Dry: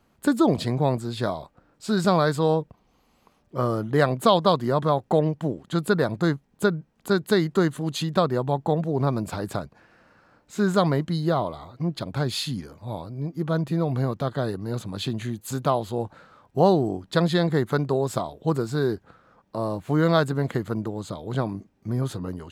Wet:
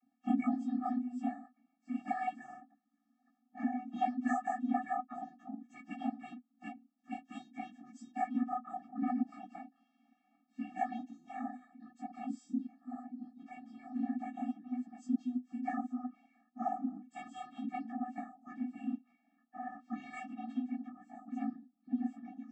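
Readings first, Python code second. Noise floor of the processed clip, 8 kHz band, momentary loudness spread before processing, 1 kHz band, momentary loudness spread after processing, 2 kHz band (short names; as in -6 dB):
-78 dBFS, under -20 dB, 12 LU, -10.5 dB, 15 LU, -16.5 dB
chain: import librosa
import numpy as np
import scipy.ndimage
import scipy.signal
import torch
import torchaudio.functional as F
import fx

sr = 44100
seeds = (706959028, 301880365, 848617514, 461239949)

y = fx.partial_stretch(x, sr, pct=130)
y = fx.high_shelf(y, sr, hz=2800.0, db=-8.0)
y = fx.vocoder(y, sr, bands=32, carrier='square', carrier_hz=250.0)
y = fx.notch_comb(y, sr, f0_hz=250.0)
y = y * 10.0 ** (2.5 / 20.0)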